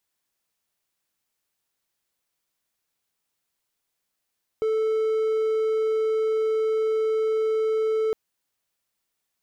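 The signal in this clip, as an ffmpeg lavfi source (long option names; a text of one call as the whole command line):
ffmpeg -f lavfi -i "aevalsrc='0.119*(1-4*abs(mod(439*t+0.25,1)-0.5))':duration=3.51:sample_rate=44100" out.wav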